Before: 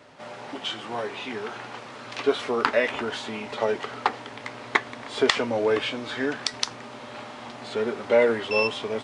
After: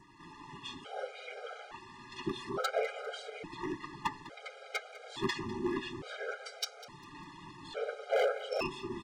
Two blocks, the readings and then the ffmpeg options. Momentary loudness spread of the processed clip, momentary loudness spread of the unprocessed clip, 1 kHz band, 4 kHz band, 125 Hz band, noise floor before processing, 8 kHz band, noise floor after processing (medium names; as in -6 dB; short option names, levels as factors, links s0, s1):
16 LU, 16 LU, -10.5 dB, -12.5 dB, -6.0 dB, -41 dBFS, -11.0 dB, -53 dBFS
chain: -af "adynamicequalizer=threshold=0.00794:dfrequency=3000:dqfactor=1.7:tfrequency=3000:tqfactor=1.7:attack=5:release=100:ratio=0.375:range=2.5:mode=cutabove:tftype=bell,acompressor=mode=upward:threshold=0.00708:ratio=2.5,aeval=exprs='val(0)*sin(2*PI*62*n/s)':c=same,afftfilt=real='hypot(re,im)*cos(2*PI*random(0))':imag='hypot(re,im)*sin(2*PI*random(1))':win_size=512:overlap=0.75,flanger=delay=6.3:depth=2.3:regen=-28:speed=0.27:shape=triangular,aeval=exprs='0.0473*(abs(mod(val(0)/0.0473+3,4)-2)-1)':c=same,aecho=1:1:200|400|600:0.133|0.0493|0.0183,afftfilt=real='re*gt(sin(2*PI*0.58*pts/sr)*(1-2*mod(floor(b*sr/1024/410),2)),0)':imag='im*gt(sin(2*PI*0.58*pts/sr)*(1-2*mod(floor(b*sr/1024/410),2)),0)':win_size=1024:overlap=0.75,volume=1.78"